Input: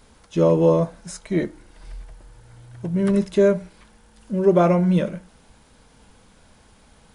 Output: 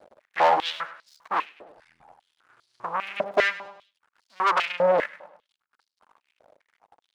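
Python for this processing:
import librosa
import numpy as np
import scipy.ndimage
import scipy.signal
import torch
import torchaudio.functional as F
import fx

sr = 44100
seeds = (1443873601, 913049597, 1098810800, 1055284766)

y = fx.dereverb_blind(x, sr, rt60_s=1.1)
y = fx.tilt_eq(y, sr, slope=-4.5)
y = fx.tube_stage(y, sr, drive_db=20.0, bias=0.3)
y = fx.backlash(y, sr, play_db=-31.5)
y = fx.echo_feedback(y, sr, ms=101, feedback_pct=42, wet_db=-15.5)
y = fx.filter_held_highpass(y, sr, hz=5.0, low_hz=600.0, high_hz=4500.0)
y = y * librosa.db_to_amplitude(3.5)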